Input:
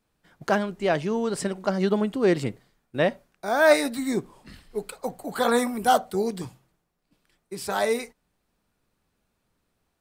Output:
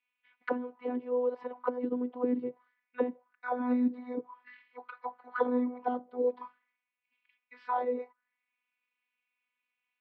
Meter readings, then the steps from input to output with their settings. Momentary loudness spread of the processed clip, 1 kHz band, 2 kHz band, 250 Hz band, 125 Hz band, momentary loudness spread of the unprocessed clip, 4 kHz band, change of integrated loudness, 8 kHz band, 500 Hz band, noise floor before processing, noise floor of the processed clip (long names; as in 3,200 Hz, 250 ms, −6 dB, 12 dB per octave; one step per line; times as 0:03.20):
18 LU, −9.5 dB, −15.5 dB, −5.5 dB, below −25 dB, 15 LU, below −25 dB, −8.5 dB, below −40 dB, −9.0 dB, −76 dBFS, below −85 dBFS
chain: envelope filter 300–2,500 Hz, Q 4.8, down, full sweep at −19 dBFS
phases set to zero 248 Hz
loudspeaker in its box 120–3,800 Hz, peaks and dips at 140 Hz +7 dB, 670 Hz −5 dB, 1,000 Hz +8 dB, 2,200 Hz +4 dB
level +4.5 dB